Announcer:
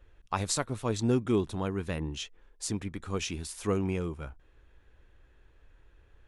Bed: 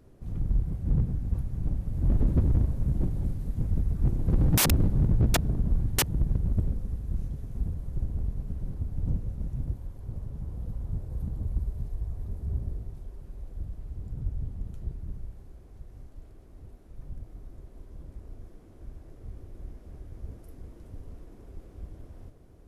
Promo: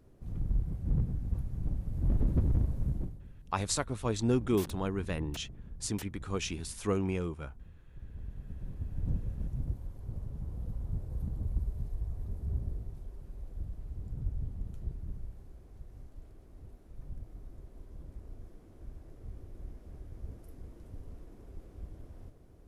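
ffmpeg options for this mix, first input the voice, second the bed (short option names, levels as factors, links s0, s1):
-filter_complex "[0:a]adelay=3200,volume=0.841[s0];[1:a]volume=4.73,afade=t=out:st=2.86:d=0.34:silence=0.149624,afade=t=in:st=7.9:d=1.35:silence=0.125893[s1];[s0][s1]amix=inputs=2:normalize=0"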